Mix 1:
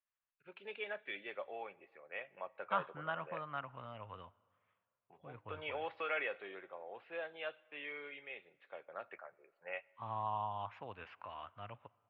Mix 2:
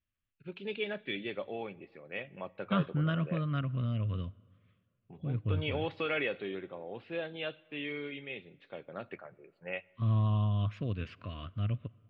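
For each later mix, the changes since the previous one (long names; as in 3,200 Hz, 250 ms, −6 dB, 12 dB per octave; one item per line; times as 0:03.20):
second voice: add Butterworth band-reject 850 Hz, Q 2.3
master: remove three-way crossover with the lows and the highs turned down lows −24 dB, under 550 Hz, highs −16 dB, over 2,300 Hz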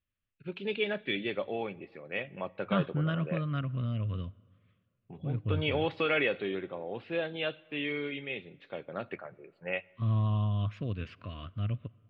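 first voice +4.5 dB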